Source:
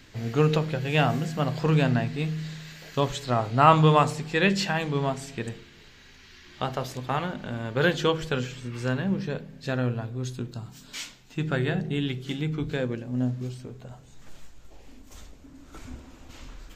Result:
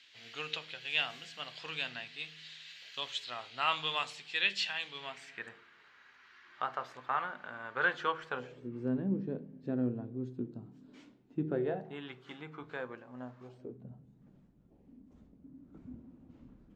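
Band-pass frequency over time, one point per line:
band-pass, Q 2.1
4.97 s 3200 Hz
5.54 s 1300 Hz
8.27 s 1300 Hz
8.72 s 290 Hz
11.43 s 290 Hz
12 s 1100 Hz
13.41 s 1100 Hz
13.84 s 200 Hz

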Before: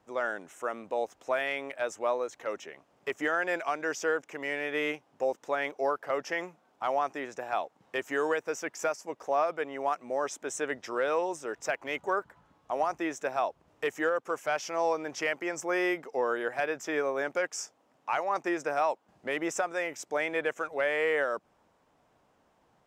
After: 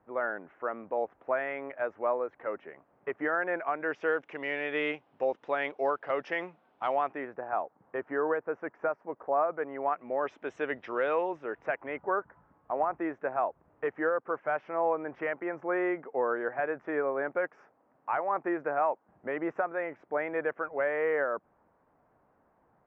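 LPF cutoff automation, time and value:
LPF 24 dB/oct
3.68 s 1900 Hz
4.27 s 3500 Hz
6.93 s 3500 Hz
7.38 s 1600 Hz
9.5 s 1600 Hz
10.45 s 3000 Hz
11.13 s 3000 Hz
12.01 s 1800 Hz

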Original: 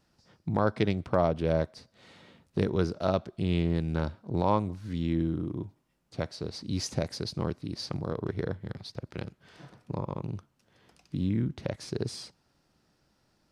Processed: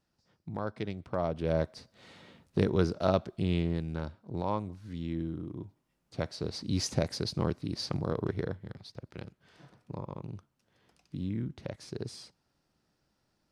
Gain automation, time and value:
0.98 s -9.5 dB
1.75 s +0.5 dB
3.31 s +0.5 dB
4 s -6.5 dB
5.48 s -6.5 dB
6.48 s +1 dB
8.24 s +1 dB
8.72 s -6 dB

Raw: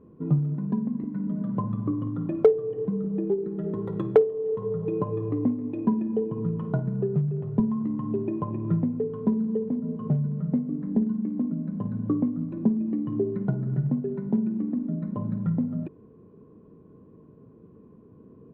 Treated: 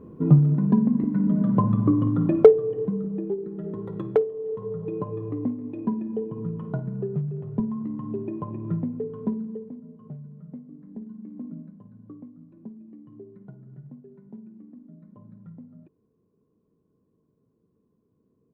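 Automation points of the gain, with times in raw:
2.3 s +7.5 dB
3.28 s -3 dB
9.27 s -3 dB
9.92 s -15 dB
10.98 s -15 dB
11.57 s -8 dB
11.81 s -18.5 dB

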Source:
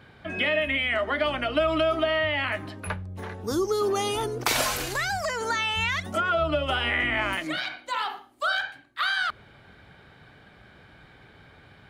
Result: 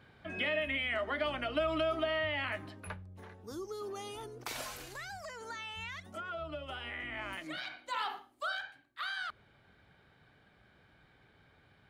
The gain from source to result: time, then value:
2.54 s -8.5 dB
3.46 s -16.5 dB
7.02 s -16.5 dB
8.15 s -5.5 dB
8.6 s -12.5 dB

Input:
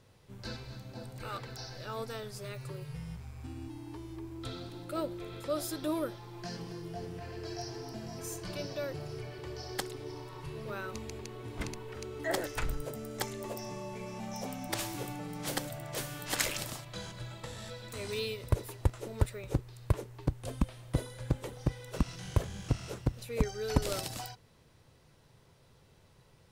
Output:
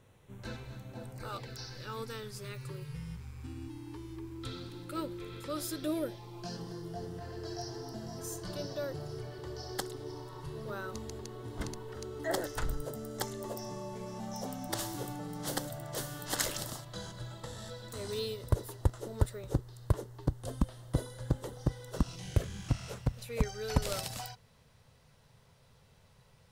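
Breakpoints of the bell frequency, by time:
bell -14 dB 0.36 oct
1.09 s 4800 Hz
1.61 s 670 Hz
5.58 s 670 Hz
6.63 s 2400 Hz
22.02 s 2400 Hz
22.81 s 330 Hz

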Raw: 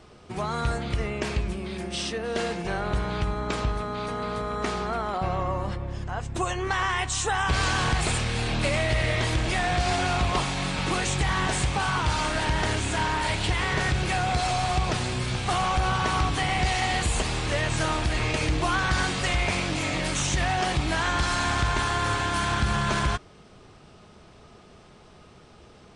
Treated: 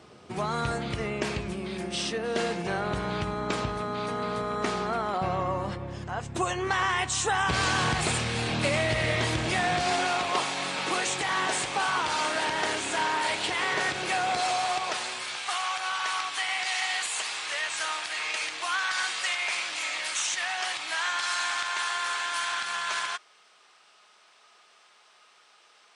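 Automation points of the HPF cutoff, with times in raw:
9.59 s 120 Hz
10.11 s 360 Hz
14.37 s 360 Hz
15.55 s 1200 Hz

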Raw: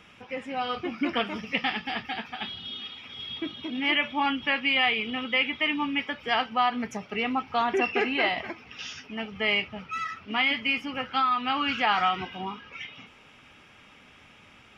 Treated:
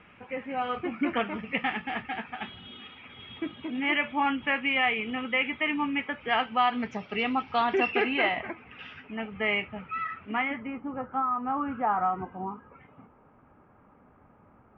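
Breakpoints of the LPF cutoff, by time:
LPF 24 dB/oct
6.14 s 2500 Hz
7.01 s 4600 Hz
7.76 s 4600 Hz
8.48 s 2400 Hz
10.26 s 2400 Hz
10.79 s 1200 Hz

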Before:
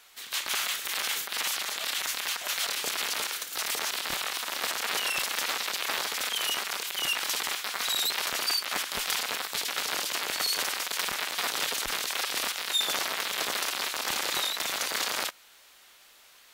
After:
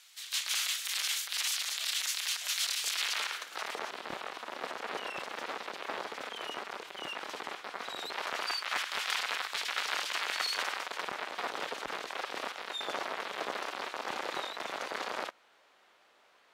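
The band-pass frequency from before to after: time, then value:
band-pass, Q 0.59
2.86 s 5400 Hz
3.36 s 1300 Hz
3.95 s 410 Hz
7.93 s 410 Hz
8.77 s 1600 Hz
10.46 s 1600 Hz
11.05 s 540 Hz

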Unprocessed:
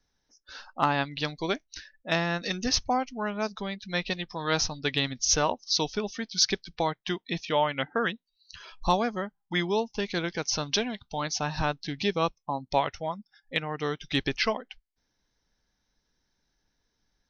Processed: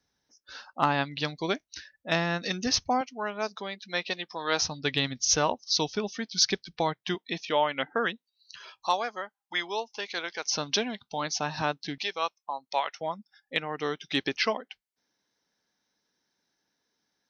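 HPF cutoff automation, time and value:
80 Hz
from 3.01 s 320 Hz
from 4.62 s 81 Hz
from 7.15 s 230 Hz
from 8.8 s 630 Hz
from 10.46 s 180 Hz
from 11.98 s 750 Hz
from 13.01 s 210 Hz

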